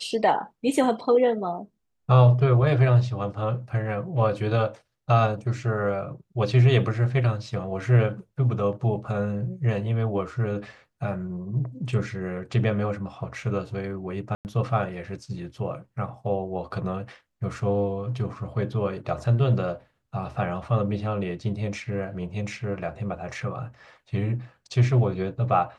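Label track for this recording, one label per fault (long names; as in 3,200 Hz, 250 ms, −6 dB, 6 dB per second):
14.350000	14.450000	drop-out 99 ms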